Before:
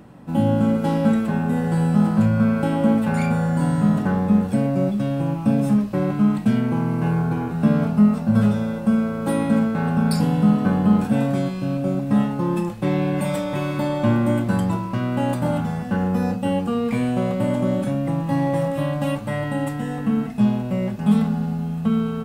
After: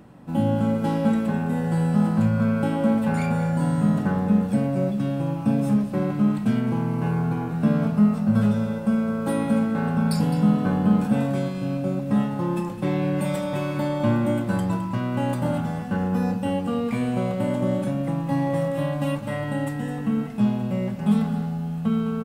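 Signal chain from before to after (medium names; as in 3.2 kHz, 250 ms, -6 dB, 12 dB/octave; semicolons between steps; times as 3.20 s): delay 211 ms -12 dB; trim -3 dB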